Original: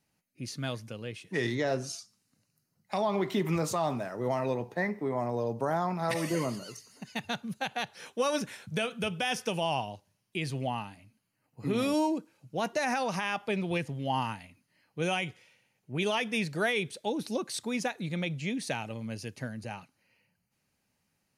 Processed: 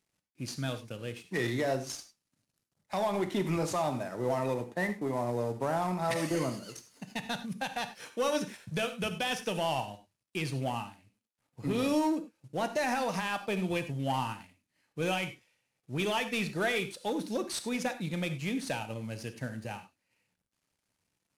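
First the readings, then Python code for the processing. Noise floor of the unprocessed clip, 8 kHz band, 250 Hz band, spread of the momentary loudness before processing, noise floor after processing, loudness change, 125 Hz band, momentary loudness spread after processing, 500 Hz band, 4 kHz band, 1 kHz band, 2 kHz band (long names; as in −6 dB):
−78 dBFS, −0.5 dB, −0.5 dB, 10 LU, −84 dBFS, −1.0 dB, −0.5 dB, 10 LU, −1.0 dB, −1.0 dB, −1.0 dB, −1.5 dB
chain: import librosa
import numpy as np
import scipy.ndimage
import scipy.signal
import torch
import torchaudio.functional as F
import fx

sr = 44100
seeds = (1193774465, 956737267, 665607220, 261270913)

y = fx.cvsd(x, sr, bps=64000)
y = fx.transient(y, sr, attack_db=0, sustain_db=-5)
y = fx.leveller(y, sr, passes=1)
y = fx.rev_gated(y, sr, seeds[0], gate_ms=120, shape='flat', drr_db=9.0)
y = F.gain(torch.from_numpy(y), -3.5).numpy()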